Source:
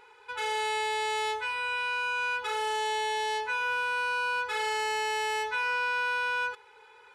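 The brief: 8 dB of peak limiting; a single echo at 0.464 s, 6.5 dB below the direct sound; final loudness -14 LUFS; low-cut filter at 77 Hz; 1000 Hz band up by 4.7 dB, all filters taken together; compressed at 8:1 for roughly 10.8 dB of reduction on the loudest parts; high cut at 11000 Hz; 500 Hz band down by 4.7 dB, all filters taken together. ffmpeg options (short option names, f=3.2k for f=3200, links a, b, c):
-af "highpass=77,lowpass=11k,equalizer=f=500:t=o:g=-6.5,equalizer=f=1k:t=o:g=7,acompressor=threshold=-36dB:ratio=8,alimiter=level_in=12dB:limit=-24dB:level=0:latency=1,volume=-12dB,aecho=1:1:464:0.473,volume=26.5dB"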